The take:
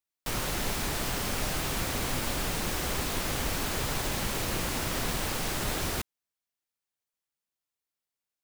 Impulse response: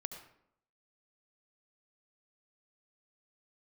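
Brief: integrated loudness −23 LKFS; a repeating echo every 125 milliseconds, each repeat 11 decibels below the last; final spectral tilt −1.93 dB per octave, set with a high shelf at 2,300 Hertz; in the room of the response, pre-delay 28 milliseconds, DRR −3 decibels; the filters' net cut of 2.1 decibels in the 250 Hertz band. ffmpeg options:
-filter_complex "[0:a]equalizer=frequency=250:width_type=o:gain=-3,highshelf=frequency=2300:gain=6,aecho=1:1:125|250|375:0.282|0.0789|0.0221,asplit=2[link_01][link_02];[1:a]atrim=start_sample=2205,adelay=28[link_03];[link_02][link_03]afir=irnorm=-1:irlink=0,volume=5dB[link_04];[link_01][link_04]amix=inputs=2:normalize=0,volume=-1dB"

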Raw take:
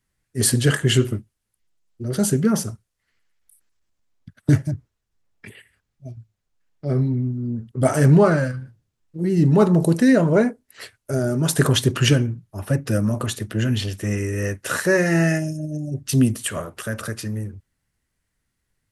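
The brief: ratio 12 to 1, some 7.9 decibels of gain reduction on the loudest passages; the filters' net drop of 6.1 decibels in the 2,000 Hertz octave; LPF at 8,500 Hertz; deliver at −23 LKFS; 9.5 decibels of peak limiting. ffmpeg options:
ffmpeg -i in.wav -af "lowpass=8500,equalizer=frequency=2000:width_type=o:gain=-8,acompressor=threshold=-18dB:ratio=12,volume=4.5dB,alimiter=limit=-13dB:level=0:latency=1" out.wav

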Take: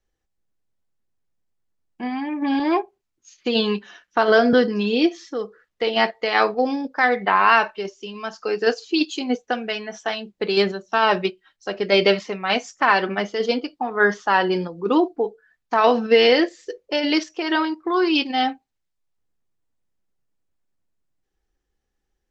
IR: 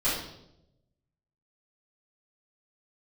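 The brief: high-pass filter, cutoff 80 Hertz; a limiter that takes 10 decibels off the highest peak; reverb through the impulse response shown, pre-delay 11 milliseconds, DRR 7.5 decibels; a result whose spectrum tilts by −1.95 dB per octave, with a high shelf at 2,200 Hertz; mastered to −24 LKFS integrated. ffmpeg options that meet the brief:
-filter_complex "[0:a]highpass=80,highshelf=frequency=2200:gain=5.5,alimiter=limit=-11.5dB:level=0:latency=1,asplit=2[link_01][link_02];[1:a]atrim=start_sample=2205,adelay=11[link_03];[link_02][link_03]afir=irnorm=-1:irlink=0,volume=-18.5dB[link_04];[link_01][link_04]amix=inputs=2:normalize=0,volume=-1dB"

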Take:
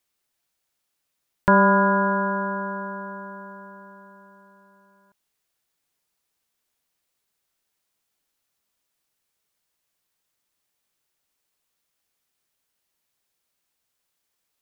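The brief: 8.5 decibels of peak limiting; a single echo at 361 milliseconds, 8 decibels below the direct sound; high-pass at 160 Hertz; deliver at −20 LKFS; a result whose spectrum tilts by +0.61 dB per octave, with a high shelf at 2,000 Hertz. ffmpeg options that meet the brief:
ffmpeg -i in.wav -af "highpass=160,highshelf=frequency=2000:gain=8.5,alimiter=limit=-12.5dB:level=0:latency=1,aecho=1:1:361:0.398,volume=3.5dB" out.wav

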